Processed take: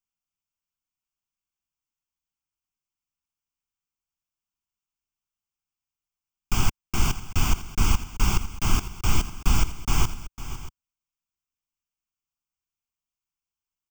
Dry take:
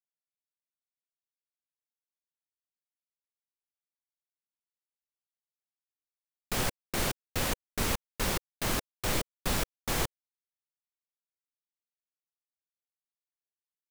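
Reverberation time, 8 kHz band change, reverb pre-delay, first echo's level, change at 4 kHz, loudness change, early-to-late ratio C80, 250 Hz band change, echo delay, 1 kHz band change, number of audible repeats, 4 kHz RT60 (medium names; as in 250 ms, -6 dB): no reverb, +3.5 dB, no reverb, -13.5 dB, +2.0 dB, +5.0 dB, no reverb, +5.0 dB, 503 ms, +4.0 dB, 2, no reverb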